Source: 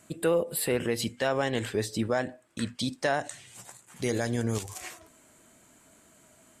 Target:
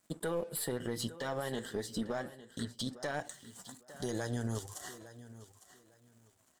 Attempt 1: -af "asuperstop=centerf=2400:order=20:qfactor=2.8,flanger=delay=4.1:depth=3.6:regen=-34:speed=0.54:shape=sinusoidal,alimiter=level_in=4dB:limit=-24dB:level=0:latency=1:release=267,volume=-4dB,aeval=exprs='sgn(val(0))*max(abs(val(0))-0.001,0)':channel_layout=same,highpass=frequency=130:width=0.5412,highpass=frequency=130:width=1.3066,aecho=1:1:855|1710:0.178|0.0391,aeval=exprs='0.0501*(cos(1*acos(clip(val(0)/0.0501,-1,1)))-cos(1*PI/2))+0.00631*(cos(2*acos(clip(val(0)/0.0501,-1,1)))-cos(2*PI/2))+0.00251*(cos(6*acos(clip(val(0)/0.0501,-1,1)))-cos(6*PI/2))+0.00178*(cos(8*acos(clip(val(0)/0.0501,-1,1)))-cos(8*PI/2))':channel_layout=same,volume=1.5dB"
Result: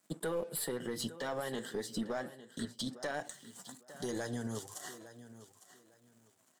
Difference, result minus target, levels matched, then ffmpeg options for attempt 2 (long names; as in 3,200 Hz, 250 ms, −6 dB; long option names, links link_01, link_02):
125 Hz band −4.0 dB
-af "asuperstop=centerf=2400:order=20:qfactor=2.8,flanger=delay=4.1:depth=3.6:regen=-34:speed=0.54:shape=sinusoidal,alimiter=level_in=4dB:limit=-24dB:level=0:latency=1:release=267,volume=-4dB,aeval=exprs='sgn(val(0))*max(abs(val(0))-0.001,0)':channel_layout=same,aecho=1:1:855|1710:0.178|0.0391,aeval=exprs='0.0501*(cos(1*acos(clip(val(0)/0.0501,-1,1)))-cos(1*PI/2))+0.00631*(cos(2*acos(clip(val(0)/0.0501,-1,1)))-cos(2*PI/2))+0.00251*(cos(6*acos(clip(val(0)/0.0501,-1,1)))-cos(6*PI/2))+0.00178*(cos(8*acos(clip(val(0)/0.0501,-1,1)))-cos(8*PI/2))':channel_layout=same,volume=1.5dB"